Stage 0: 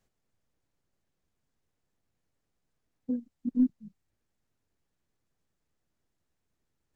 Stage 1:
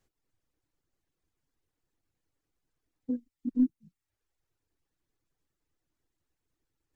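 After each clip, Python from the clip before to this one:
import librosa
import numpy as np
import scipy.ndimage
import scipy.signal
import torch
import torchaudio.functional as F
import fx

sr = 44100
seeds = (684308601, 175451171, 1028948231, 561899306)

y = fx.dereverb_blind(x, sr, rt60_s=0.77)
y = fx.graphic_eq_31(y, sr, hz=(200, 315, 630), db=(-7, 5, -4))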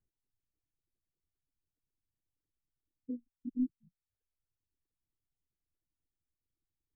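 y = fx.envelope_sharpen(x, sr, power=2.0)
y = F.gain(torch.from_numpy(y), -7.5).numpy()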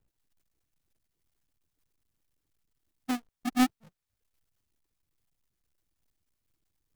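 y = fx.halfwave_hold(x, sr)
y = F.gain(torch.from_numpy(y), 5.5).numpy()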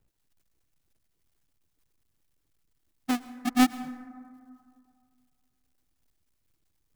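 y = fx.rev_plate(x, sr, seeds[0], rt60_s=2.2, hf_ratio=0.3, predelay_ms=95, drr_db=15.0)
y = F.gain(torch.from_numpy(y), 3.5).numpy()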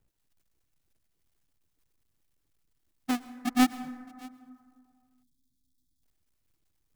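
y = x + 10.0 ** (-23.5 / 20.0) * np.pad(x, (int(620 * sr / 1000.0), 0))[:len(x)]
y = fx.spec_erase(y, sr, start_s=5.23, length_s=0.8, low_hz=340.0, high_hz=3200.0)
y = F.gain(torch.from_numpy(y), -1.5).numpy()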